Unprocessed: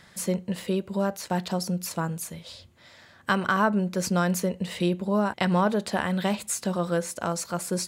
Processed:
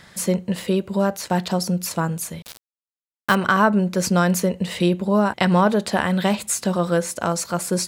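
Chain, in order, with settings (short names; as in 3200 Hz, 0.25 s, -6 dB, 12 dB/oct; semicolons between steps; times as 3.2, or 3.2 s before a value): 2.42–3.35 requantised 6-bit, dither none; gain +6 dB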